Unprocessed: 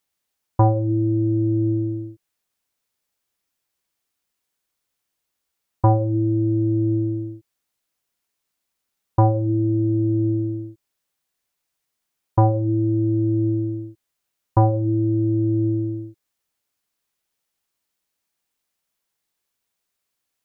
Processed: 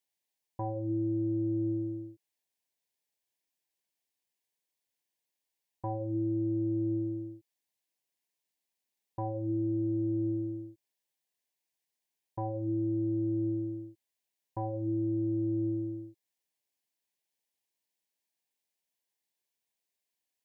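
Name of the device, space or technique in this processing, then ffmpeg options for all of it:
PA system with an anti-feedback notch: -af "highpass=frequency=190:poles=1,asuperstop=centerf=1300:order=4:qfactor=2.3,alimiter=limit=-16.5dB:level=0:latency=1:release=194,volume=-8dB"

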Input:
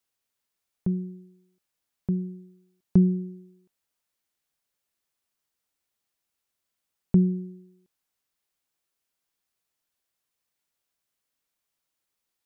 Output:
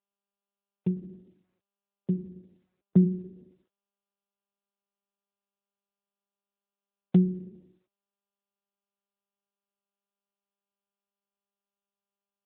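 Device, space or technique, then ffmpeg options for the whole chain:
mobile call with aggressive noise cancelling: -filter_complex "[0:a]asplit=3[link_01][link_02][link_03];[link_01]afade=type=out:start_time=1.09:duration=0.02[link_04];[link_02]highpass=frequency=98:width=0.5412,highpass=frequency=98:width=1.3066,afade=type=in:start_time=1.09:duration=0.02,afade=type=out:start_time=3.04:duration=0.02[link_05];[link_03]afade=type=in:start_time=3.04:duration=0.02[link_06];[link_04][link_05][link_06]amix=inputs=3:normalize=0,highpass=170,afftdn=noise_reduction=23:noise_floor=-47,volume=1.5dB" -ar 8000 -c:a libopencore_amrnb -b:a 10200

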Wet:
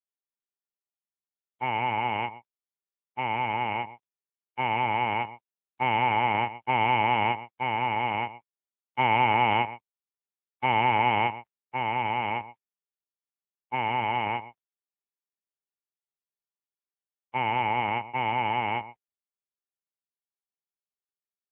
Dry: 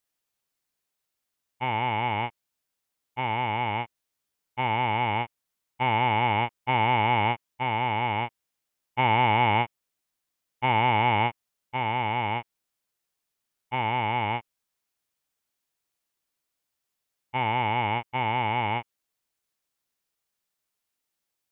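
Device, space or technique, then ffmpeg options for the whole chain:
mobile call with aggressive noise cancelling: -af "highpass=frequency=140:poles=1,aecho=1:1:123:0.2,afftdn=noise_reduction=18:noise_floor=-45" -ar 8000 -c:a libopencore_amrnb -b:a 7950

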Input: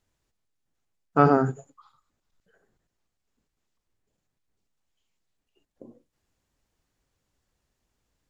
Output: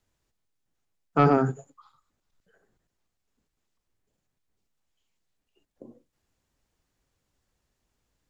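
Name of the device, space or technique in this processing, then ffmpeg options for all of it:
one-band saturation: -filter_complex "[0:a]acrossover=split=270|2400[link_01][link_02][link_03];[link_02]asoftclip=type=tanh:threshold=-11.5dB[link_04];[link_01][link_04][link_03]amix=inputs=3:normalize=0"

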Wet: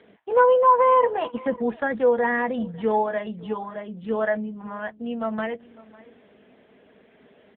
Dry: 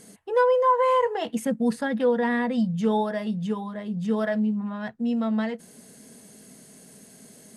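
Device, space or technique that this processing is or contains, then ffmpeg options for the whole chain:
satellite phone: -af "highpass=380,lowpass=3300,aecho=1:1:550:0.0794,volume=5dB" -ar 8000 -c:a libopencore_amrnb -b:a 6700

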